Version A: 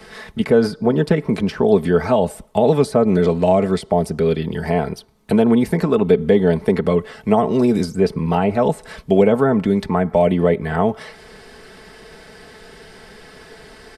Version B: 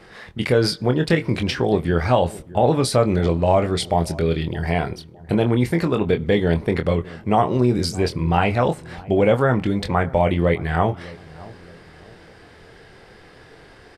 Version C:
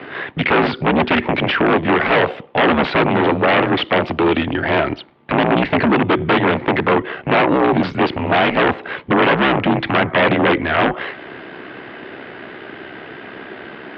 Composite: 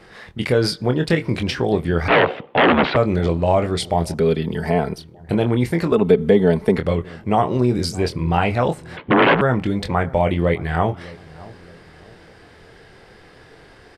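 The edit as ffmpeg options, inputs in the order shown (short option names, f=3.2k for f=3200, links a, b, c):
-filter_complex "[2:a]asplit=2[a][b];[0:a]asplit=2[c][d];[1:a]asplit=5[e][f][g][h][i];[e]atrim=end=2.082[j];[a]atrim=start=2.078:end=2.962[k];[f]atrim=start=2.958:end=4.142[l];[c]atrim=start=4.138:end=4.982[m];[g]atrim=start=4.978:end=5.922[n];[d]atrim=start=5.918:end=6.782[o];[h]atrim=start=6.778:end=8.972[p];[b]atrim=start=8.968:end=9.412[q];[i]atrim=start=9.408[r];[j][k]acrossfade=d=0.004:c1=hsin:c2=hsin[s];[s][l]acrossfade=d=0.004:c1=hsin:c2=hsin[t];[t][m]acrossfade=d=0.004:c1=hsin:c2=hsin[u];[u][n]acrossfade=d=0.004:c1=hsin:c2=hsin[v];[v][o]acrossfade=d=0.004:c1=hsin:c2=hsin[w];[w][p]acrossfade=d=0.004:c1=hsin:c2=hsin[x];[x][q]acrossfade=d=0.004:c1=hsin:c2=hsin[y];[y][r]acrossfade=d=0.004:c1=hsin:c2=hsin"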